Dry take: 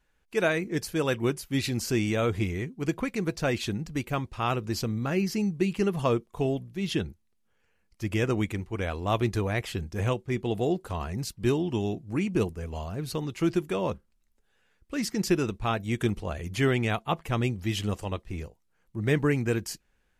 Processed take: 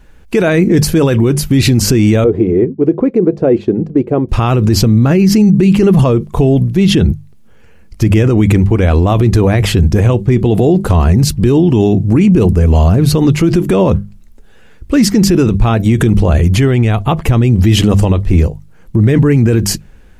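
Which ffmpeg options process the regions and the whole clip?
-filter_complex "[0:a]asettb=1/sr,asplit=3[a][b][c];[a]atrim=end=2.244[d];[b]atrim=start=2.24:end=4.29,asetpts=PTS-STARTPTS,afade=t=in:d=0.004:c=qsin,afade=t=out:st=2.046:d=0.004:c=qsin,bandpass=f=420:t=q:w=2.2,agate=range=-33dB:threshold=-52dB:ratio=3:release=100:detection=peak[e];[c]atrim=start=4.286[f];[d][e]acrossfade=d=0.004:c1=hsin:c2=qsin[g];[g][f]acrossfade=d=0.004:c1=qsin:c2=hsin,asettb=1/sr,asplit=3[h][i][j];[h]atrim=end=16.384[k];[i]atrim=start=16.38:end=17.19,asetpts=PTS-STARTPTS,afade=t=in:d=0.004:c=qsin,afade=t=out:st=0.806:d=0.004:c=qsin,asubboost=boost=11:cutoff=99,acompressor=threshold=-37dB:ratio=2:attack=3.2:release=140:knee=1:detection=peak[l];[j]atrim=start=17.186[m];[k][l]acrossfade=d=0.004:c1=hsin:c2=qsin[n];[n][m]acrossfade=d=0.004:c1=qsin:c2=hsin,lowshelf=f=480:g=12,bandreject=f=50:t=h:w=6,bandreject=f=100:t=h:w=6,bandreject=f=150:t=h:w=6,bandreject=f=200:t=h:w=6,alimiter=level_in=21dB:limit=-1dB:release=50:level=0:latency=1,volume=-1dB"

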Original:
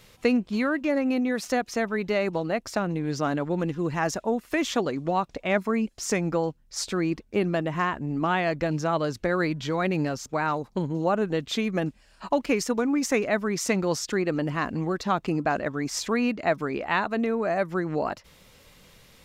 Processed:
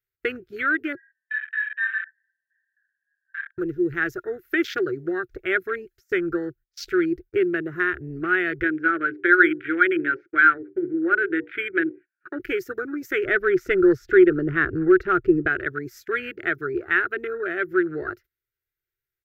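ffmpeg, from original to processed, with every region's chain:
-filter_complex "[0:a]asettb=1/sr,asplit=3[a][b][c];[a]atrim=end=0.954[d];[b]atrim=start=0.95:end=3.58,asetpts=PTS-STARTPTS,afade=t=in:d=0.004:c=qsin,afade=t=out:st=2.626:d=0.004:c=qsin,asuperpass=centerf=1700:order=12:qfactor=5.2,aecho=1:1:20|46|79.8|123.7|180.9|255.1|351.7:0.794|0.631|0.501|0.398|0.316|0.251|0.2,atrim=end_sample=115983[e];[c]atrim=start=3.576[f];[d][e]acrossfade=d=0.004:c1=hsin:c2=qsin[g];[g][f]acrossfade=d=0.004:c1=qsin:c2=hsin,asettb=1/sr,asplit=3[h][i][j];[h]atrim=end=8.634[k];[i]atrim=start=8.63:end=12.4,asetpts=PTS-STARTPTS,afade=t=in:d=0.004:c=qsin,afade=t=out:st=3.766:d=0.004:c=qsin,highpass=290,equalizer=f=310:t=q:w=4:g=9,equalizer=f=450:t=q:w=4:g=-4,equalizer=f=710:t=q:w=4:g=-4,equalizer=f=1k:t=q:w=4:g=-6,equalizer=f=1.5k:t=q:w=4:g=9,equalizer=f=2.3k:t=q:w=4:g=9,lowpass=f=2.4k:w=0.5412,lowpass=f=2.4k:w=1.3066,bandreject=f=60:t=h:w=6,bandreject=f=120:t=h:w=6,bandreject=f=180:t=h:w=6,bandreject=f=240:t=h:w=6,bandreject=f=300:t=h:w=6,bandreject=f=360:t=h:w=6,bandreject=f=420:t=h:w=6,bandreject=f=480:t=h:w=6,bandreject=f=540:t=h:w=6[l];[j]atrim=start=12.396[m];[k][l]acrossfade=d=0.004:c1=hsin:c2=qsin[n];[n][m]acrossfade=d=0.004:c1=qsin:c2=hsin,asettb=1/sr,asplit=3[o][p][q];[o]atrim=end=13.254[r];[p]atrim=start=13.25:end=15.48,asetpts=PTS-STARTPTS,afade=t=in:d=0.004:c=qsin,afade=t=out:st=2.226:d=0.004:c=qsin,lowpass=f=1.6k:p=1,aeval=exprs='0.299*sin(PI/2*1.41*val(0)/0.299)':c=same[s];[q]atrim=start=15.476[t];[r][s]acrossfade=d=0.004:c1=hsin:c2=qsin[u];[u][t]acrossfade=d=0.004:c1=qsin:c2=hsin,afwtdn=0.02,agate=range=-24dB:threshold=-44dB:ratio=16:detection=peak,firequalizer=gain_entry='entry(120,0);entry(210,-28);entry(360,7);entry(530,-15);entry(980,-25);entry(1400,8);entry(2800,-5);entry(6000,-5);entry(9000,-8);entry(13000,14)':delay=0.05:min_phase=1,volume=3.5dB"

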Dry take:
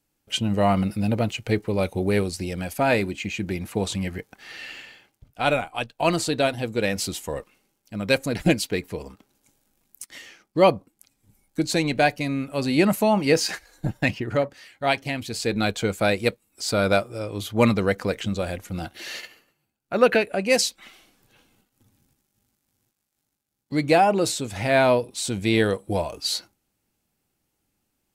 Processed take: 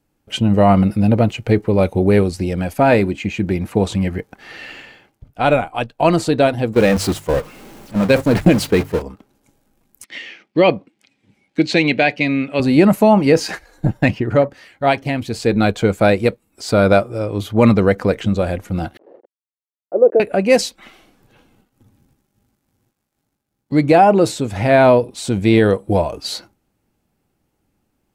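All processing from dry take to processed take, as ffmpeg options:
-filter_complex "[0:a]asettb=1/sr,asplit=3[a][b][c];[a]atrim=end=6.734[d];[b]atrim=start=6.73:end=9.02,asetpts=PTS-STARTPTS,afade=t=in:d=0.004:c=qsin,afade=t=out:st=2.286:d=0.004:c=qsin,aeval=exprs='val(0)+0.5*0.0668*sgn(val(0))':c=same,agate=range=-16dB:threshold=-26dB:ratio=16:release=100:detection=peak,bandreject=f=50:t=h:w=6,bandreject=f=100:t=h:w=6,bandreject=f=150:t=h:w=6[e];[c]atrim=start=9.016[f];[d][e]acrossfade=d=0.004:c1=hsin:c2=qsin[g];[g][f]acrossfade=d=0.004:c1=qsin:c2=hsin,asettb=1/sr,asplit=3[h][i][j];[h]atrim=end=10.044[k];[i]atrim=start=10.04:end=12.6,asetpts=PTS-STARTPTS,afade=t=in:d=0.004:c=qsin,afade=t=out:st=2.556:d=0.004:c=qsin,highpass=170,lowpass=3.5k,highshelf=f=1.7k:t=q:w=1.5:g=9[l];[j]atrim=start=12.596[m];[k][l]acrossfade=d=0.004:c1=hsin:c2=qsin[n];[n][m]acrossfade=d=0.004:c1=qsin:c2=hsin,asettb=1/sr,asplit=3[o][p][q];[o]atrim=end=18.974[r];[p]atrim=start=18.97:end=20.2,asetpts=PTS-STARTPTS,afade=t=in:d=0.004:c=qsin,afade=t=out:st=1.226:d=0.004:c=qsin,aeval=exprs='val(0)*gte(abs(val(0)),0.0299)':c=same,asuperpass=centerf=450:order=4:qfactor=1.6[s];[q]atrim=start=20.196[t];[r][s]acrossfade=d=0.004:c1=hsin:c2=qsin[u];[u][t]acrossfade=d=0.004:c1=qsin:c2=hsin,highshelf=f=2.1k:g=-11.5,alimiter=level_in=10.5dB:limit=-1dB:release=50:level=0:latency=1,volume=-1dB"

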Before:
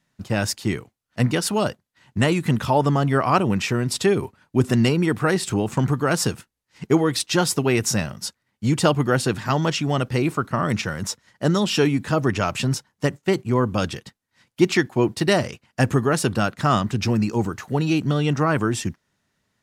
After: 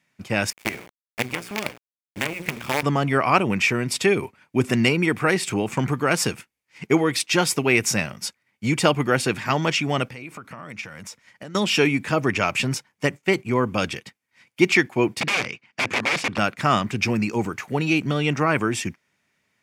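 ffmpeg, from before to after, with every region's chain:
-filter_complex "[0:a]asettb=1/sr,asplit=3[a][b][c];[a]atrim=end=0.504[d];[b]atrim=start=0.5:end=2.83,asetpts=PTS-STARTPTS,afade=t=in:d=0.004:c=qsin,afade=t=out:st=2.326:d=0.004:c=qsin,bandreject=f=60:t=h:w=6,bandreject=f=120:t=h:w=6,bandreject=f=180:t=h:w=6,bandreject=f=240:t=h:w=6,bandreject=f=300:t=h:w=6,bandreject=f=360:t=h:w=6,bandreject=f=420:t=h:w=6,acrossover=split=720|1900[e][f][g];[e]acompressor=threshold=-24dB:ratio=4[h];[f]acompressor=threshold=-34dB:ratio=4[i];[g]acompressor=threshold=-42dB:ratio=4[j];[h][i][j]amix=inputs=3:normalize=0,acrusher=bits=4:dc=4:mix=0:aa=0.000001[k];[c]atrim=start=2.826[l];[d][k]acrossfade=d=0.004:c1=hsin:c2=qsin[m];[m][l]acrossfade=d=0.004:c1=qsin:c2=hsin,asettb=1/sr,asplit=3[n][o][p];[n]atrim=end=10.074[q];[o]atrim=start=10.07:end=11.55,asetpts=PTS-STARTPTS,afade=t=in:d=0.004:c=qsin,afade=t=out:st=1.476:d=0.004:c=qsin,bandreject=f=380:w=6.1,acompressor=threshold=-33dB:ratio=12:attack=3.2:release=140:knee=1:detection=peak[r];[p]atrim=start=11.546[s];[q][r]acrossfade=d=0.004:c1=hsin:c2=qsin[t];[t][s]acrossfade=d=0.004:c1=qsin:c2=hsin,asettb=1/sr,asplit=3[u][v][w];[u]atrim=end=15.214[x];[v]atrim=start=15.21:end=16.38,asetpts=PTS-STARTPTS,afade=t=in:d=0.004:c=qsin,afade=t=out:st=1.166:d=0.004:c=qsin,equalizer=f=580:t=o:w=0.52:g=-5.5,aeval=exprs='(mod(8.41*val(0)+1,2)-1)/8.41':c=same,highpass=110,lowpass=5.3k[y];[w]atrim=start=16.376[z];[x][y]acrossfade=d=0.004:c1=hsin:c2=qsin[aa];[aa][z]acrossfade=d=0.004:c1=qsin:c2=hsin,highpass=f=170:p=1,equalizer=f=2.3k:t=o:w=0.41:g=11.5,bandreject=f=4k:w=19"

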